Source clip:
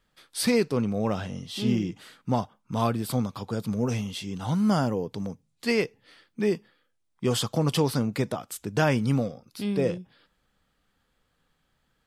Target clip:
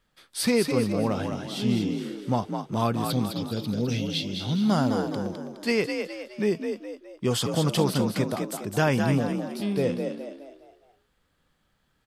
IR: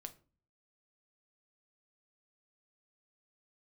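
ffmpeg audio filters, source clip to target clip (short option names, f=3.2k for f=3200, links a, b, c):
-filter_complex "[0:a]asettb=1/sr,asplit=3[a][b][c];[a]atrim=end=3.104[d];[b]atrim=start=3.1:end=4.7,asetpts=PTS-STARTPTS,afade=t=in:d=0.004:c=qsin,afade=t=out:st=1.596:d=0.004:c=qsin,equalizer=f=1k:t=o:w=1:g=-11,equalizer=f=4k:t=o:w=1:g=12,equalizer=f=8k:t=o:w=1:g=-8[e];[c]atrim=start=4.696[f];[d][e]acrossfade=d=0.004:c1=hsin:c2=qsin[g];[g][f]acrossfade=d=0.004:c1=qsin:c2=hsin,asplit=6[h][i][j][k][l][m];[i]adelay=208,afreqshift=47,volume=-6dB[n];[j]adelay=416,afreqshift=94,volume=-13.7dB[o];[k]adelay=624,afreqshift=141,volume=-21.5dB[p];[l]adelay=832,afreqshift=188,volume=-29.2dB[q];[m]adelay=1040,afreqshift=235,volume=-37dB[r];[h][n][o][p][q][r]amix=inputs=6:normalize=0"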